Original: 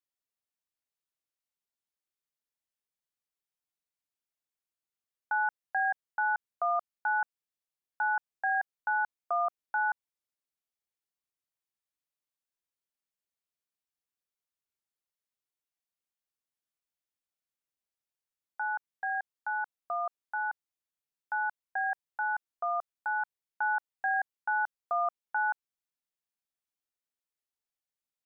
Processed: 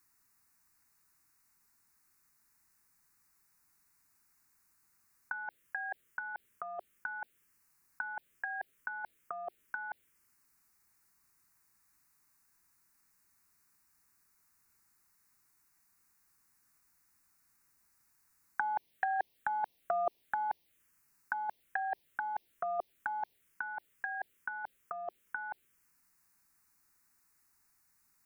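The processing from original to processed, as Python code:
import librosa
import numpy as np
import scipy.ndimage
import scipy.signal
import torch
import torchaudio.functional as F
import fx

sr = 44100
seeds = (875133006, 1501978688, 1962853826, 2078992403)

y = fx.dynamic_eq(x, sr, hz=380.0, q=2.1, threshold_db=-54.0, ratio=4.0, max_db=5)
y = fx.over_compress(y, sr, threshold_db=-37.0, ratio=-0.5)
y = fx.env_phaser(y, sr, low_hz=560.0, high_hz=1400.0, full_db=-38.5)
y = y * 10.0 ** (11.0 / 20.0)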